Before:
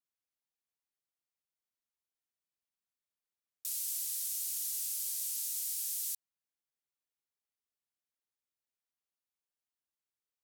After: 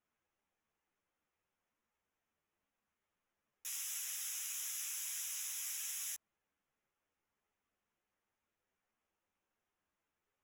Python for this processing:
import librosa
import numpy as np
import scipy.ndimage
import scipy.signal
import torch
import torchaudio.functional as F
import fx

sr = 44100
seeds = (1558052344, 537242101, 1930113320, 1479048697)

y = np.convolve(x, np.full(10, 1.0 / 10))[:len(x)]
y = fx.ensemble(y, sr)
y = y * 10.0 ** (16.5 / 20.0)